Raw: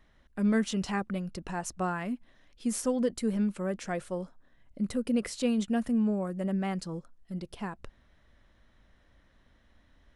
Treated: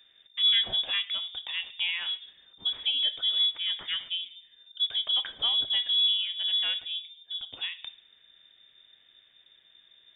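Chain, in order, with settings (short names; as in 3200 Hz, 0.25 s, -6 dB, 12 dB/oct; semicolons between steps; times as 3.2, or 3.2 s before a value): plate-style reverb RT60 0.64 s, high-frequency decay 0.55×, DRR 10.5 dB; inverted band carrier 3600 Hz; gain +1 dB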